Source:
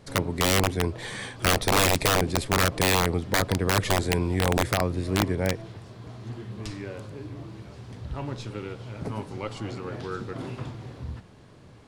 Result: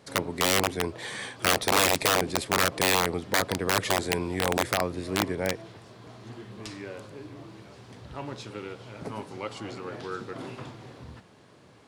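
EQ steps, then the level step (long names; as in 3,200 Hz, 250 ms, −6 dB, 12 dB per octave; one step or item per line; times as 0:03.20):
high-pass filter 290 Hz 6 dB per octave
0.0 dB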